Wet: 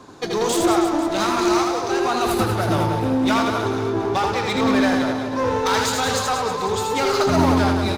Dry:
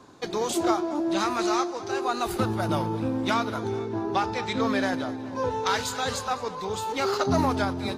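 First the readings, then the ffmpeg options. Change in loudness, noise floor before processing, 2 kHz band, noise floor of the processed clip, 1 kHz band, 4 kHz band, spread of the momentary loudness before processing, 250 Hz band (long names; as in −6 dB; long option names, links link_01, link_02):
+7.0 dB, −36 dBFS, +7.0 dB, −25 dBFS, +6.5 dB, +7.0 dB, 6 LU, +7.5 dB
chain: -filter_complex "[0:a]asplit=2[link_01][link_02];[link_02]aeval=exprs='0.0473*(abs(mod(val(0)/0.0473+3,4)-2)-1)':channel_layout=same,volume=-5dB[link_03];[link_01][link_03]amix=inputs=2:normalize=0,aecho=1:1:80|184|319.2|495|723.4:0.631|0.398|0.251|0.158|0.1,volume=3dB"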